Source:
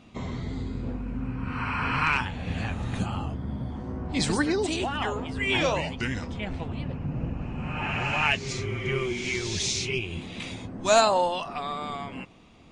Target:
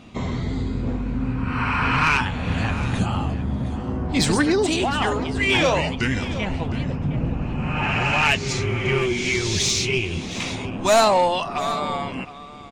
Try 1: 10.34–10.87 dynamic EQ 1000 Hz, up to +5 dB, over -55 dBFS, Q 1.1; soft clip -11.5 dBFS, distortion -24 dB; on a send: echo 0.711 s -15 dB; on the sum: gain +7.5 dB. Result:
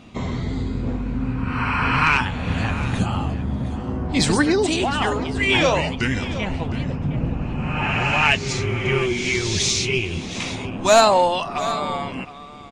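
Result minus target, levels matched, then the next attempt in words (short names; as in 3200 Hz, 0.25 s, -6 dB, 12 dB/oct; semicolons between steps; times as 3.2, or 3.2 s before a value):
soft clip: distortion -9 dB
10.34–10.87 dynamic EQ 1000 Hz, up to +5 dB, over -55 dBFS, Q 1.1; soft clip -18 dBFS, distortion -15 dB; on a send: echo 0.711 s -15 dB; on the sum: gain +7.5 dB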